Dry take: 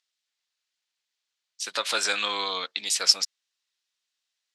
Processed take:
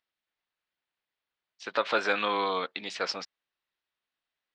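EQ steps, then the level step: tape spacing loss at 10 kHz 44 dB; +7.5 dB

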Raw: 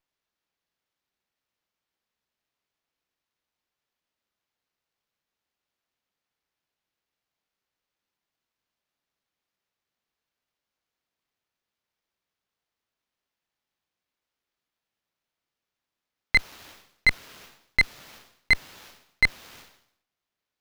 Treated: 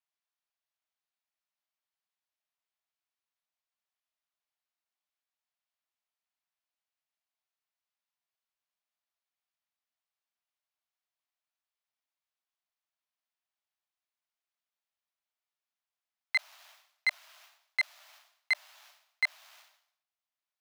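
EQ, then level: Chebyshev high-pass 600 Hz, order 8; -8.0 dB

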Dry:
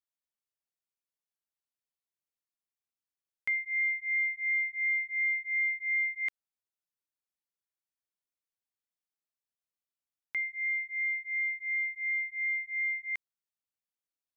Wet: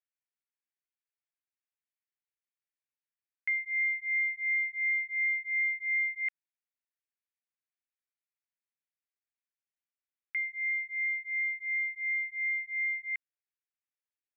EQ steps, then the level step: Butterworth band-pass 2000 Hz, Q 1.7; 0.0 dB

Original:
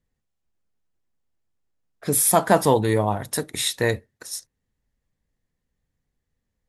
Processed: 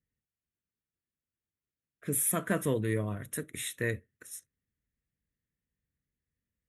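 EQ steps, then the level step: HPF 52 Hz; fixed phaser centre 2000 Hz, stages 4; -7.5 dB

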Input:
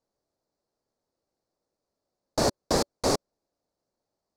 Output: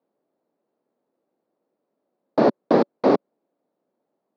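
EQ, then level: HPF 210 Hz 24 dB/oct; LPF 3500 Hz 24 dB/oct; tilt -3 dB/oct; +5.5 dB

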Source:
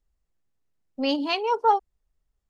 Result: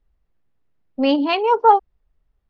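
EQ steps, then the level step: air absorption 270 m; +8.5 dB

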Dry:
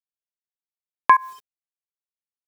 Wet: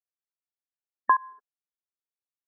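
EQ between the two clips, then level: brick-wall FIR band-pass 230–1800 Hz; -7.0 dB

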